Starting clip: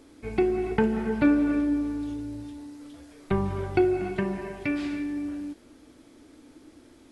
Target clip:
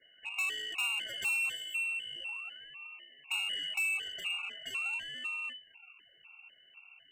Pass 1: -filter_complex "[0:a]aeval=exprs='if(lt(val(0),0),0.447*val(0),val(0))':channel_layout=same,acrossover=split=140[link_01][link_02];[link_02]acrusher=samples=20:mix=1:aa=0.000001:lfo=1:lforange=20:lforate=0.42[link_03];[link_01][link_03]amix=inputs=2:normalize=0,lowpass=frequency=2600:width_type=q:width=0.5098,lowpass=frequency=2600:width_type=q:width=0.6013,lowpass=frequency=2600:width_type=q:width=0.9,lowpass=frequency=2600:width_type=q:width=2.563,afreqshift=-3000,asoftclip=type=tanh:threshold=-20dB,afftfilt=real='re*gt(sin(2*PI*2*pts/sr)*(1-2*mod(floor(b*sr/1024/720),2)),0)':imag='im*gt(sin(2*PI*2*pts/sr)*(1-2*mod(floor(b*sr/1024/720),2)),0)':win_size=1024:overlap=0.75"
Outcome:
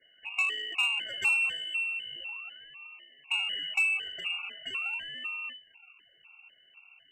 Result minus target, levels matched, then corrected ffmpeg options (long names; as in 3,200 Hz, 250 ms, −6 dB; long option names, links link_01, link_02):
soft clipping: distortion −8 dB
-filter_complex "[0:a]aeval=exprs='if(lt(val(0),0),0.447*val(0),val(0))':channel_layout=same,acrossover=split=140[link_01][link_02];[link_02]acrusher=samples=20:mix=1:aa=0.000001:lfo=1:lforange=20:lforate=0.42[link_03];[link_01][link_03]amix=inputs=2:normalize=0,lowpass=frequency=2600:width_type=q:width=0.5098,lowpass=frequency=2600:width_type=q:width=0.6013,lowpass=frequency=2600:width_type=q:width=0.9,lowpass=frequency=2600:width_type=q:width=2.563,afreqshift=-3000,asoftclip=type=tanh:threshold=-29dB,afftfilt=real='re*gt(sin(2*PI*2*pts/sr)*(1-2*mod(floor(b*sr/1024/720),2)),0)':imag='im*gt(sin(2*PI*2*pts/sr)*(1-2*mod(floor(b*sr/1024/720),2)),0)':win_size=1024:overlap=0.75"